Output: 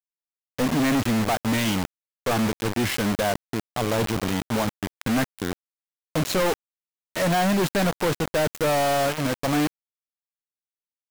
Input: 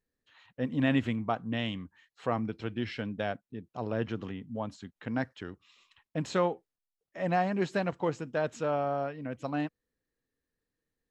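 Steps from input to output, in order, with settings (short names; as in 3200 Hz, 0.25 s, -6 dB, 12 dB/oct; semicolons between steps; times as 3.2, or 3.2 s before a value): companded quantiser 2-bit; gain +5 dB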